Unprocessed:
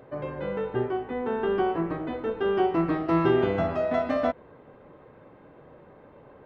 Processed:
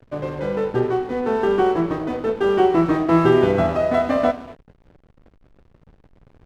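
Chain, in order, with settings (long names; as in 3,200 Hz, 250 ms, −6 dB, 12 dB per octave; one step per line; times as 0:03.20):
reverb whose tail is shaped and stops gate 270 ms flat, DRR 11 dB
slack as between gear wheels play −39 dBFS
level +7 dB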